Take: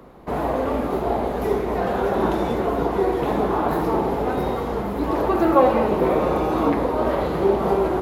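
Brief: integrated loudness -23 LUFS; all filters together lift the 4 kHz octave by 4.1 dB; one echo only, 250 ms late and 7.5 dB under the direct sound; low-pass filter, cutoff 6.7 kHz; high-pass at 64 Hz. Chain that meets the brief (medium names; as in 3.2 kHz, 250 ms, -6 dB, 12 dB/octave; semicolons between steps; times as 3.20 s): high-pass 64 Hz; low-pass 6.7 kHz; peaking EQ 4 kHz +5.5 dB; delay 250 ms -7.5 dB; trim -2 dB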